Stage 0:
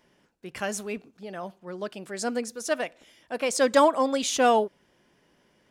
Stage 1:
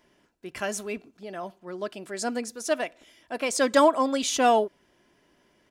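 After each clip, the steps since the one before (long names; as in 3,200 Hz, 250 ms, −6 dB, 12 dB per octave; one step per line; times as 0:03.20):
comb filter 3 ms, depth 30%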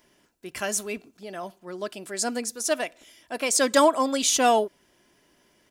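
high-shelf EQ 4,900 Hz +10.5 dB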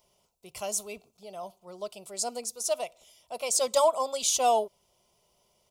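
phaser with its sweep stopped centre 700 Hz, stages 4
level −2.5 dB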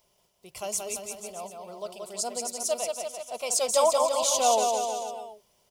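bit reduction 12 bits
bouncing-ball delay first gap 180 ms, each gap 0.9×, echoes 5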